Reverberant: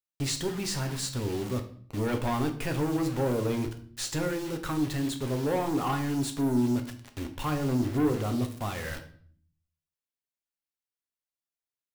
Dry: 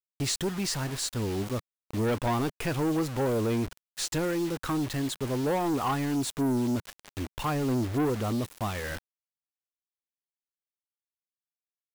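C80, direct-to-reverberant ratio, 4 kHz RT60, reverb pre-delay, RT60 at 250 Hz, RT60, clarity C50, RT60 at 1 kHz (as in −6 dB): 15.5 dB, 4.5 dB, 0.45 s, 7 ms, 0.90 s, 0.50 s, 11.0 dB, 0.50 s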